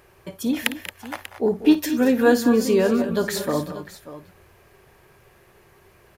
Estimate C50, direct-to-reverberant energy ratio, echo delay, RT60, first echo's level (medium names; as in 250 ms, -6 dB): no reverb, no reverb, 54 ms, no reverb, -15.0 dB